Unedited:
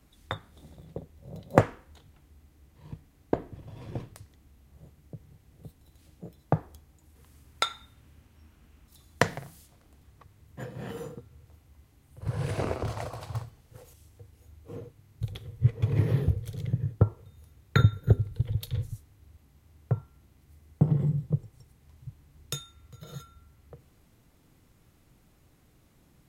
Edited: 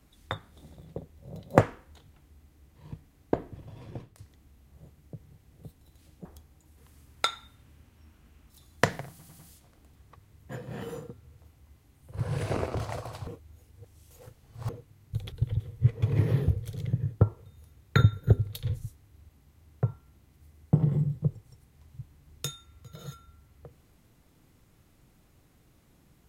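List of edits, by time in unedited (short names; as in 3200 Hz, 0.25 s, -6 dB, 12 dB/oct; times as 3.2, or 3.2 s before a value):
3.61–4.18 fade out, to -9.5 dB
6.25–6.63 cut
9.47 stutter 0.10 s, 4 plays
13.35–14.77 reverse
18.3–18.58 move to 15.4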